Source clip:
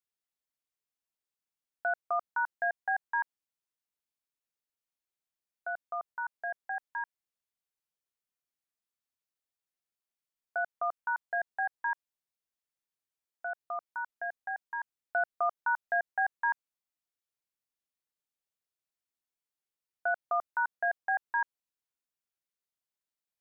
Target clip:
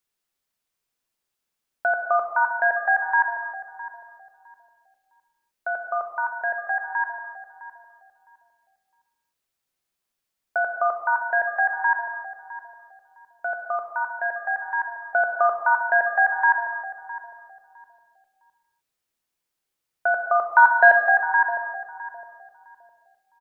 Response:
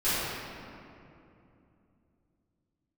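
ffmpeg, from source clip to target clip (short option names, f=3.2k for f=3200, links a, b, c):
-filter_complex "[0:a]asettb=1/sr,asplit=3[a][b][c];[a]atrim=end=20.524[d];[b]atrim=start=20.52:end=21,asetpts=PTS-STARTPTS,afade=t=in:d=0.004:c=qsin,afade=t=out:st=0.476:d=0.004:c=qsin,acontrast=88[e];[c]atrim=start=20.996[f];[d][e]acrossfade=d=0.004:c1=hsin:c2=qsin[g];[g][f]acrossfade=d=0.004:c1=qsin:c2=hsin,asplit=2[h][i];[i]adelay=659,lowpass=f=1k:p=1,volume=-12dB,asplit=2[j][k];[k]adelay=659,lowpass=f=1k:p=1,volume=0.29,asplit=2[l][m];[m]adelay=659,lowpass=f=1k:p=1,volume=0.29[n];[h][j][l][n]amix=inputs=4:normalize=0,asplit=2[o][p];[1:a]atrim=start_sample=2205,afade=t=out:st=0.36:d=0.01,atrim=end_sample=16317[q];[p][q]afir=irnorm=-1:irlink=0,volume=-15.5dB[r];[o][r]amix=inputs=2:normalize=0,volume=8.5dB"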